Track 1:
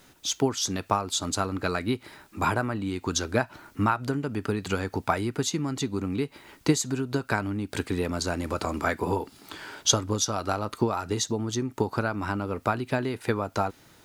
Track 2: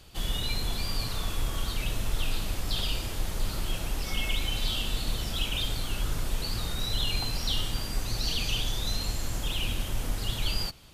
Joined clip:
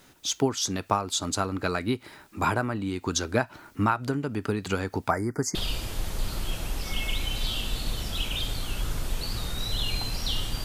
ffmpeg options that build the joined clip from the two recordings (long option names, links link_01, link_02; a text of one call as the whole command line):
ffmpeg -i cue0.wav -i cue1.wav -filter_complex "[0:a]asettb=1/sr,asplit=3[link_01][link_02][link_03];[link_01]atrim=end=5.104[link_04];[link_02]atrim=start=5.1:end=5.55,asetpts=PTS-STARTPTS,afade=type=in:duration=0.004:curve=qsin,afade=type=out:start_time=0.446:duration=0.004:curve=qsin,asuperstop=centerf=3200:order=12:qfactor=1.2[link_05];[link_03]atrim=start=5.546[link_06];[link_04][link_05]acrossfade=duration=0.004:curve1=hsin:curve2=qsin[link_07];[link_07][link_06]acrossfade=duration=0.004:curve1=qsin:curve2=hsin,apad=whole_dur=10.64,atrim=end=10.64,atrim=end=5.552[link_08];[1:a]atrim=start=2.758:end=7.85[link_09];[link_08][link_09]acrossfade=duration=0.004:curve1=hsin:curve2=hsin" out.wav